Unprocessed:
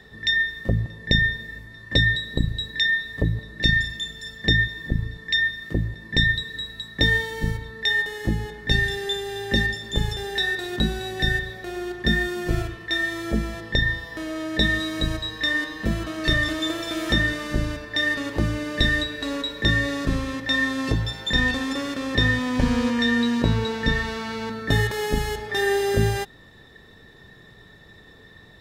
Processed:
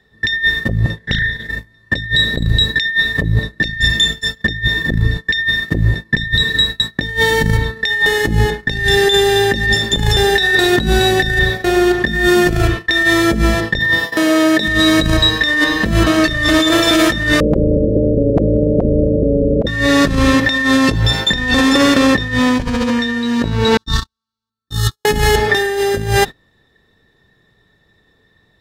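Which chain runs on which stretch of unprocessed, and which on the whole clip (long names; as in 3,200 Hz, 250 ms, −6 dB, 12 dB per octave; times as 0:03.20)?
0:00.97–0:01.50: downward compressor 5 to 1, threshold −33 dBFS + highs frequency-modulated by the lows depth 0.31 ms
0:13.79–0:14.68: high-pass filter 190 Hz + high-shelf EQ 11,000 Hz +7 dB
0:17.40–0:19.67: Chebyshev low-pass filter 550 Hz, order 10 + volume swells 182 ms + every bin compressed towards the loudest bin 10 to 1
0:23.77–0:25.05: drawn EQ curve 100 Hz 0 dB, 220 Hz −8 dB, 350 Hz −2 dB, 530 Hz −29 dB, 1,200 Hz +5 dB, 2,100 Hz −20 dB, 3,700 Hz +5 dB + noise gate −27 dBFS, range −42 dB
whole clip: compressor whose output falls as the input rises −28 dBFS, ratio −1; noise gate −32 dBFS, range −26 dB; boost into a limiter +15.5 dB; level −1 dB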